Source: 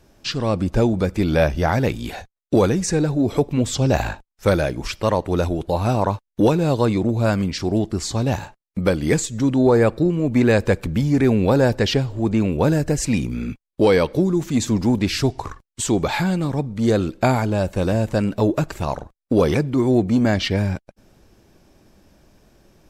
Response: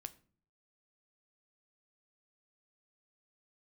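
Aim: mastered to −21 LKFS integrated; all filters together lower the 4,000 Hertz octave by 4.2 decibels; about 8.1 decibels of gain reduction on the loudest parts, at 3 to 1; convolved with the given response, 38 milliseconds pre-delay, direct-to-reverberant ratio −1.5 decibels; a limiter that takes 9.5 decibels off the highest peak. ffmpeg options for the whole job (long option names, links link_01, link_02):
-filter_complex "[0:a]equalizer=frequency=4000:width_type=o:gain=-5.5,acompressor=threshold=-23dB:ratio=3,alimiter=limit=-21dB:level=0:latency=1,asplit=2[link_01][link_02];[1:a]atrim=start_sample=2205,adelay=38[link_03];[link_02][link_03]afir=irnorm=-1:irlink=0,volume=6dB[link_04];[link_01][link_04]amix=inputs=2:normalize=0,volume=5dB"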